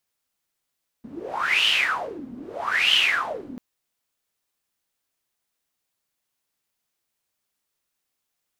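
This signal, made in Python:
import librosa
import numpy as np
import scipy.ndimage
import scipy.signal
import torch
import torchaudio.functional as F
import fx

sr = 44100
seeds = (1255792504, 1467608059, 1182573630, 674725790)

y = fx.wind(sr, seeds[0], length_s=2.54, low_hz=240.0, high_hz=3000.0, q=11.0, gusts=2, swing_db=19.0)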